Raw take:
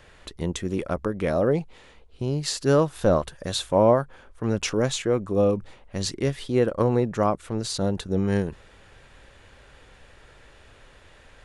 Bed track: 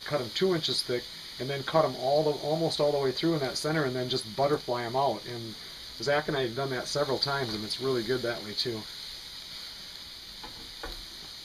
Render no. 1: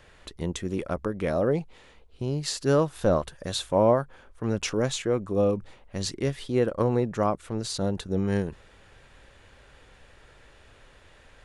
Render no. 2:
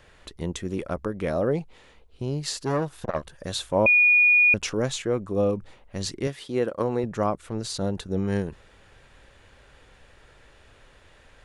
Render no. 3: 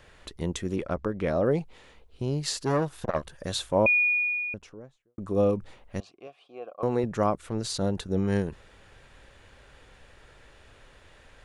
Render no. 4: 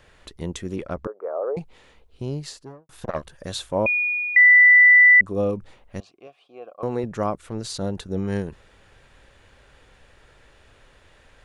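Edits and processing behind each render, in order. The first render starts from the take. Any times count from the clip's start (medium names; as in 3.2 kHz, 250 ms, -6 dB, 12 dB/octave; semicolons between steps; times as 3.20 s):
trim -2.5 dB
2.57–3.34 s: transformer saturation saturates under 830 Hz; 3.86–4.54 s: bleep 2.45 kHz -14 dBFS; 6.27–7.04 s: high-pass 220 Hz 6 dB/octave
0.76–1.45 s: distance through air 69 m; 3.43–5.18 s: studio fade out; 6.00–6.83 s: vowel filter a
1.07–1.57 s: elliptic band-pass 430–1300 Hz, stop band 60 dB; 2.25–2.89 s: studio fade out; 4.36–5.21 s: bleep 1.98 kHz -8.5 dBFS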